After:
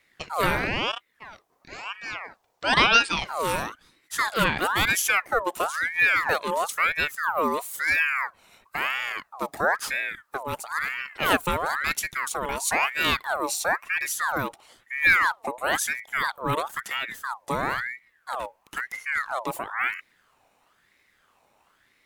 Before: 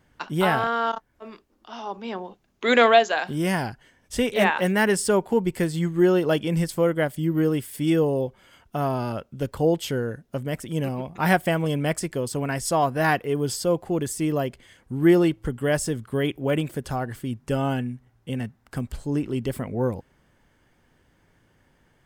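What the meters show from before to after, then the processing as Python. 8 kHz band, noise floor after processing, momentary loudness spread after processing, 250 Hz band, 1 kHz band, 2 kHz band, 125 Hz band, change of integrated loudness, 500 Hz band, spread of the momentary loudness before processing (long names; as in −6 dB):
+2.5 dB, −67 dBFS, 14 LU, −12.5 dB, +1.0 dB, +6.0 dB, −12.5 dB, −1.0 dB, −8.5 dB, 13 LU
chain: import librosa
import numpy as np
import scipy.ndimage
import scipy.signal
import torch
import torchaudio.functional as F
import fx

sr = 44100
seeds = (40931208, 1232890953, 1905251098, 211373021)

y = fx.high_shelf(x, sr, hz=5700.0, db=8.0)
y = fx.ring_lfo(y, sr, carrier_hz=1400.0, swing_pct=50, hz=1.0)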